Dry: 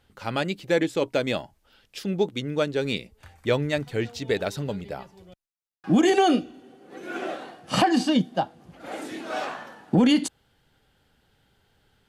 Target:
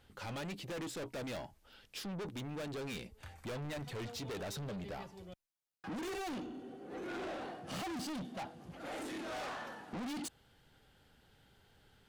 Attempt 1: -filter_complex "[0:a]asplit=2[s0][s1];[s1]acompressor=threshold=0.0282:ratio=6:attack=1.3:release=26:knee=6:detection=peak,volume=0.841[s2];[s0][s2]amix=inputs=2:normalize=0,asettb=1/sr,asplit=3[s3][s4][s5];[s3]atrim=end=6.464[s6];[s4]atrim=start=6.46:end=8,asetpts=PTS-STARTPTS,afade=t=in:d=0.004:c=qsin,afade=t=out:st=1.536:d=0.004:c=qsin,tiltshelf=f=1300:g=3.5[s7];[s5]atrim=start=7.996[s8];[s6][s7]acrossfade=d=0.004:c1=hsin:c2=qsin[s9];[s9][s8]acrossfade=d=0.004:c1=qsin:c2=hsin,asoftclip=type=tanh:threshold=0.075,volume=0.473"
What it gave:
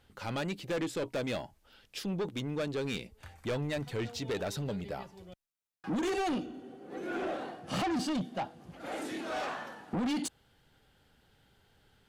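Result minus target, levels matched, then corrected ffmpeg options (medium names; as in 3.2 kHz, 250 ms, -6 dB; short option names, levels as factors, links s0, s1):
saturation: distortion -5 dB
-filter_complex "[0:a]asplit=2[s0][s1];[s1]acompressor=threshold=0.0282:ratio=6:attack=1.3:release=26:knee=6:detection=peak,volume=0.841[s2];[s0][s2]amix=inputs=2:normalize=0,asettb=1/sr,asplit=3[s3][s4][s5];[s3]atrim=end=6.464[s6];[s4]atrim=start=6.46:end=8,asetpts=PTS-STARTPTS,afade=t=in:d=0.004:c=qsin,afade=t=out:st=1.536:d=0.004:c=qsin,tiltshelf=f=1300:g=3.5[s7];[s5]atrim=start=7.996[s8];[s6][s7]acrossfade=d=0.004:c1=hsin:c2=qsin[s9];[s9][s8]acrossfade=d=0.004:c1=qsin:c2=hsin,asoftclip=type=tanh:threshold=0.0224,volume=0.473"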